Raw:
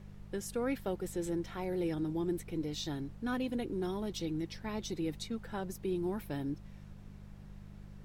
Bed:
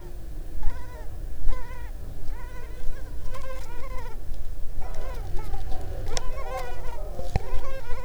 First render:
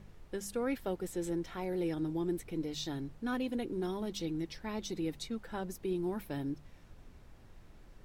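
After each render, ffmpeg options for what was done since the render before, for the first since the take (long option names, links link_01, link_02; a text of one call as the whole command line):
ffmpeg -i in.wav -af "bandreject=frequency=50:width_type=h:width=4,bandreject=frequency=100:width_type=h:width=4,bandreject=frequency=150:width_type=h:width=4,bandreject=frequency=200:width_type=h:width=4" out.wav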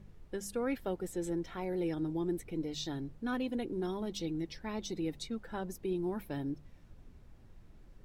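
ffmpeg -i in.wav -af "afftdn=noise_reduction=6:noise_floor=-57" out.wav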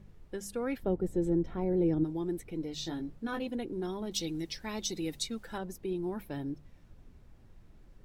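ffmpeg -i in.wav -filter_complex "[0:a]asplit=3[link_01][link_02][link_03];[link_01]afade=type=out:start_time=0.82:duration=0.02[link_04];[link_02]tiltshelf=frequency=850:gain=9.5,afade=type=in:start_time=0.82:duration=0.02,afade=type=out:start_time=2.03:duration=0.02[link_05];[link_03]afade=type=in:start_time=2.03:duration=0.02[link_06];[link_04][link_05][link_06]amix=inputs=3:normalize=0,asettb=1/sr,asplit=3[link_07][link_08][link_09];[link_07]atrim=end=2.754[link_10];[link_08]atrim=start=2.75:end=3.47,asetpts=PTS-STARTPTS,afade=type=in:duration=0.004:curve=qsin,afade=type=out:start_time=0.716:duration=0.004:curve=qsin,asplit=2[link_11][link_12];[link_12]adelay=18,volume=-4.5dB[link_13];[link_11][link_13]amix=inputs=2:normalize=0,atrim=end_sample=31752[link_14];[link_09]atrim=start=3.466[link_15];[link_10][link_14]acrossfade=duration=0.004:curve1=hsin:curve2=qsin[link_16];[link_16][link_15]acrossfade=duration=0.004:curve1=qsin:curve2=hsin,asettb=1/sr,asplit=3[link_17][link_18][link_19];[link_17]atrim=end=4.114[link_20];[link_18]atrim=start=4.11:end=5.58,asetpts=PTS-STARTPTS,afade=type=in:duration=0.004:curve=qsin,afade=type=out:start_time=1.466:duration=0.004:curve=qsin,highshelf=frequency=2900:gain=12[link_21];[link_19]atrim=start=5.576[link_22];[link_20][link_21]acrossfade=duration=0.004:curve1=hsin:curve2=qsin[link_23];[link_23][link_22]acrossfade=duration=0.004:curve1=qsin:curve2=hsin" out.wav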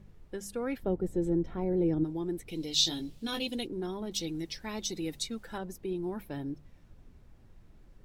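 ffmpeg -i in.wav -filter_complex "[0:a]asplit=3[link_01][link_02][link_03];[link_01]afade=type=out:start_time=2.47:duration=0.02[link_04];[link_02]highshelf=frequency=2300:width_type=q:width=1.5:gain=12.5,afade=type=in:start_time=2.47:duration=0.02,afade=type=out:start_time=3.66:duration=0.02[link_05];[link_03]afade=type=in:start_time=3.66:duration=0.02[link_06];[link_04][link_05][link_06]amix=inputs=3:normalize=0" out.wav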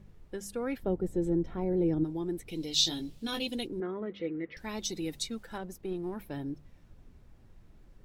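ffmpeg -i in.wav -filter_complex "[0:a]asettb=1/sr,asplit=3[link_01][link_02][link_03];[link_01]atrim=end=3.804[link_04];[link_02]atrim=start=3.8:end=4.57,asetpts=PTS-STARTPTS,afade=type=in:duration=0.004:curve=qsin,afade=type=out:start_time=0.766:duration=0.004:curve=qsin,highpass=130,equalizer=frequency=160:width_type=q:width=4:gain=-4,equalizer=frequency=490:width_type=q:width=4:gain=9,equalizer=frequency=840:width_type=q:width=4:gain=-8,equalizer=frequency=1300:width_type=q:width=4:gain=5,equalizer=frequency=2000:width_type=q:width=4:gain=9,lowpass=frequency=2200:width=0.5412,lowpass=frequency=2200:width=1.3066[link_05];[link_03]atrim=start=4.566[link_06];[link_04][link_05]acrossfade=duration=0.004:curve1=hsin:curve2=qsin[link_07];[link_07][link_06]acrossfade=duration=0.004:curve1=qsin:curve2=hsin,asettb=1/sr,asplit=3[link_08][link_09][link_10];[link_08]atrim=end=5.434[link_11];[link_09]atrim=start=5.43:end=6.21,asetpts=PTS-STARTPTS,afade=type=in:duration=0.004:curve=qsin,afade=type=out:start_time=0.776:duration=0.004:curve=qsin,aeval=exprs='if(lt(val(0),0),0.708*val(0),val(0))':channel_layout=same[link_12];[link_10]atrim=start=6.206[link_13];[link_11][link_12]acrossfade=duration=0.004:curve1=hsin:curve2=qsin[link_14];[link_14][link_13]acrossfade=duration=0.004:curve1=qsin:curve2=hsin" out.wav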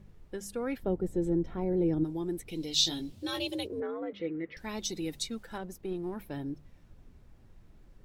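ffmpeg -i in.wav -filter_complex "[0:a]asettb=1/sr,asplit=3[link_01][link_02][link_03];[link_01]atrim=end=1.934[link_04];[link_02]atrim=start=1.93:end=2.42,asetpts=PTS-STARTPTS,afade=type=in:duration=0.004:curve=qsin,afade=type=out:start_time=0.486:duration=0.004:curve=qsin,equalizer=frequency=11000:width_type=o:width=1.5:gain=4.5[link_05];[link_03]atrim=start=2.416[link_06];[link_04][link_05]acrossfade=duration=0.004:curve1=hsin:curve2=qsin[link_07];[link_07][link_06]acrossfade=duration=0.004:curve1=qsin:curve2=hsin,asettb=1/sr,asplit=3[link_08][link_09][link_10];[link_08]atrim=end=3.124[link_11];[link_09]atrim=start=3.12:end=4.13,asetpts=PTS-STARTPTS,afade=type=in:duration=0.004:curve=qsin,afade=type=out:start_time=1.006:duration=0.004:curve=qsin,afreqshift=76[link_12];[link_10]atrim=start=4.126[link_13];[link_11][link_12]acrossfade=duration=0.004:curve1=hsin:curve2=qsin[link_14];[link_14][link_13]acrossfade=duration=0.004:curve1=qsin:curve2=hsin" out.wav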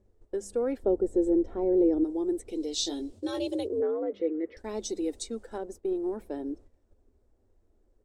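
ffmpeg -i in.wav -af "agate=range=-11dB:threshold=-48dB:ratio=16:detection=peak,firequalizer=gain_entry='entry(100,0);entry(150,-29);entry(210,-1);entry(410,9);entry(1000,-2);entry(2500,-9);entry(8300,3);entry(12000,-13)':delay=0.05:min_phase=1" out.wav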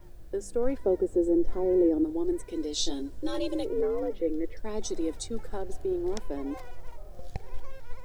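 ffmpeg -i in.wav -i bed.wav -filter_complex "[1:a]volume=-11.5dB[link_01];[0:a][link_01]amix=inputs=2:normalize=0" out.wav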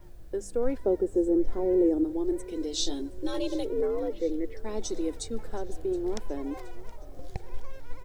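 ffmpeg -i in.wav -af "aecho=1:1:721|1442|2163|2884:0.0891|0.0472|0.025|0.0133" out.wav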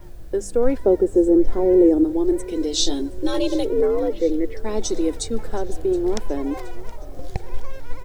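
ffmpeg -i in.wav -af "volume=9dB" out.wav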